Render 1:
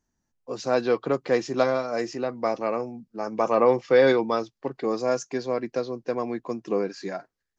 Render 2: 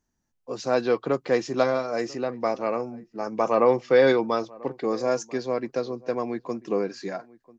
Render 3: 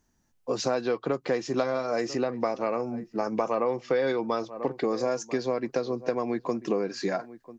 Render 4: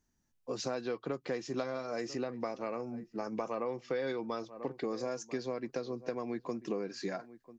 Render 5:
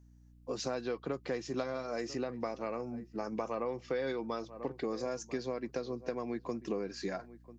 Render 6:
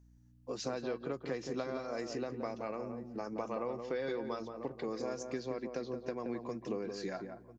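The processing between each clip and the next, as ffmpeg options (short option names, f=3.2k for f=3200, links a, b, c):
-filter_complex "[0:a]asplit=2[a][b];[b]adelay=991.3,volume=-22dB,highshelf=f=4k:g=-22.3[c];[a][c]amix=inputs=2:normalize=0"
-af "acompressor=threshold=-31dB:ratio=6,volume=7dB"
-af "equalizer=f=760:t=o:w=1.8:g=-3.5,volume=-7dB"
-af "aeval=exprs='val(0)+0.00126*(sin(2*PI*60*n/s)+sin(2*PI*2*60*n/s)/2+sin(2*PI*3*60*n/s)/3+sin(2*PI*4*60*n/s)/4+sin(2*PI*5*60*n/s)/5)':c=same"
-filter_complex "[0:a]asplit=2[a][b];[b]adelay=174,lowpass=f=1k:p=1,volume=-5dB,asplit=2[c][d];[d]adelay=174,lowpass=f=1k:p=1,volume=0.16,asplit=2[e][f];[f]adelay=174,lowpass=f=1k:p=1,volume=0.16[g];[a][c][e][g]amix=inputs=4:normalize=0,volume=-2.5dB"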